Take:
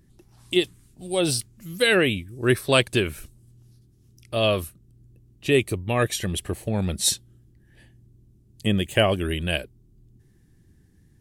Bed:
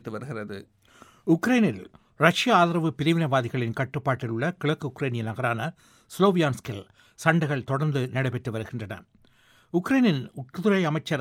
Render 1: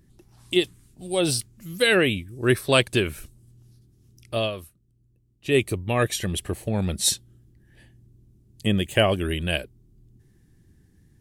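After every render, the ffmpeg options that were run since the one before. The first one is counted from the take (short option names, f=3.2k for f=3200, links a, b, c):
-filter_complex "[0:a]asplit=3[a][b][c];[a]atrim=end=4.51,asetpts=PTS-STARTPTS,afade=t=out:st=4.36:d=0.15:silence=0.298538[d];[b]atrim=start=4.51:end=5.42,asetpts=PTS-STARTPTS,volume=-10.5dB[e];[c]atrim=start=5.42,asetpts=PTS-STARTPTS,afade=t=in:d=0.15:silence=0.298538[f];[d][e][f]concat=n=3:v=0:a=1"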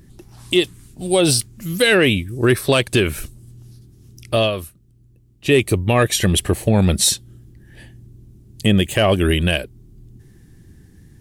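-filter_complex "[0:a]asplit=2[a][b];[b]acontrast=78,volume=1.5dB[c];[a][c]amix=inputs=2:normalize=0,alimiter=limit=-5.5dB:level=0:latency=1:release=221"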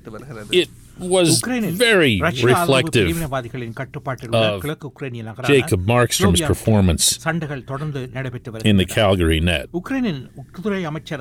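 -filter_complex "[1:a]volume=-0.5dB[a];[0:a][a]amix=inputs=2:normalize=0"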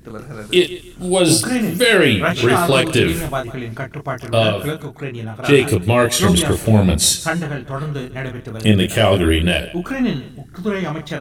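-filter_complex "[0:a]asplit=2[a][b];[b]adelay=28,volume=-3.5dB[c];[a][c]amix=inputs=2:normalize=0,aecho=1:1:147|294:0.141|0.0367"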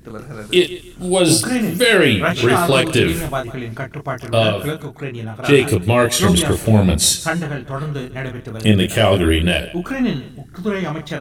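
-af anull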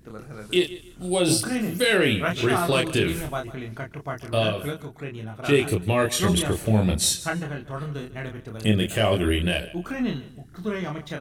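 -af "volume=-7.5dB"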